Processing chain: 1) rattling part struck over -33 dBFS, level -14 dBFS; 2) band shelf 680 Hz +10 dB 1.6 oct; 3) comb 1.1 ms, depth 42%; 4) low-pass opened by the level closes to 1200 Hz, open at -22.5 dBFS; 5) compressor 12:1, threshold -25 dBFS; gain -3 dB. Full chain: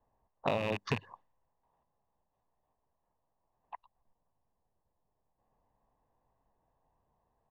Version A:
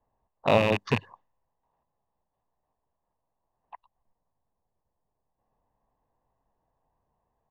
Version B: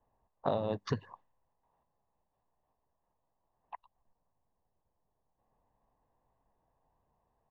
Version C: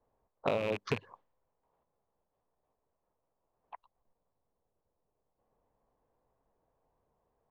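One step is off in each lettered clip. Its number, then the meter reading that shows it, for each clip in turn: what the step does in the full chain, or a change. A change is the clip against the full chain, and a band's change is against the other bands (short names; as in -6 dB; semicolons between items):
5, mean gain reduction 7.0 dB; 1, 2 kHz band -11.0 dB; 3, 500 Hz band +3.5 dB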